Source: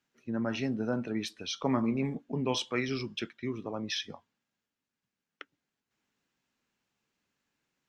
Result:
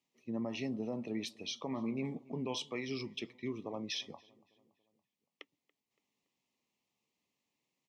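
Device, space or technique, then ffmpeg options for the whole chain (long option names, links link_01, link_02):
PA system with an anti-feedback notch: -filter_complex "[0:a]highpass=frequency=140:poles=1,asuperstop=centerf=1500:order=4:qfactor=2,alimiter=level_in=1dB:limit=-24dB:level=0:latency=1:release=180,volume=-1dB,asplit=2[link_01][link_02];[link_02]adelay=283,lowpass=frequency=2300:poles=1,volume=-22.5dB,asplit=2[link_03][link_04];[link_04]adelay=283,lowpass=frequency=2300:poles=1,volume=0.54,asplit=2[link_05][link_06];[link_06]adelay=283,lowpass=frequency=2300:poles=1,volume=0.54,asplit=2[link_07][link_08];[link_08]adelay=283,lowpass=frequency=2300:poles=1,volume=0.54[link_09];[link_01][link_03][link_05][link_07][link_09]amix=inputs=5:normalize=0,volume=-3dB"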